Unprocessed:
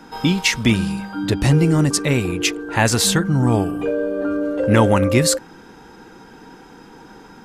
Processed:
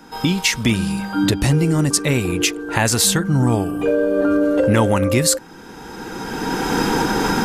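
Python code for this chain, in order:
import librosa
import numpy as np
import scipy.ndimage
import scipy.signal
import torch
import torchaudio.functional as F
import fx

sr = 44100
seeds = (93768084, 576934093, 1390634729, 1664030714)

y = fx.recorder_agc(x, sr, target_db=-6.5, rise_db_per_s=18.0, max_gain_db=30)
y = fx.high_shelf(y, sr, hz=7100.0, db=7.5)
y = y * 10.0 ** (-2.0 / 20.0)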